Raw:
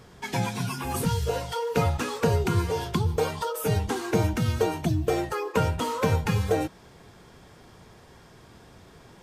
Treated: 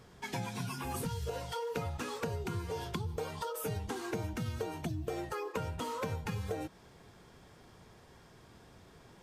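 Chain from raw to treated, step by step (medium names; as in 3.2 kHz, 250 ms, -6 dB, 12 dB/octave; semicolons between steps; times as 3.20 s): compression, threshold -27 dBFS, peak gain reduction 9 dB; trim -6.5 dB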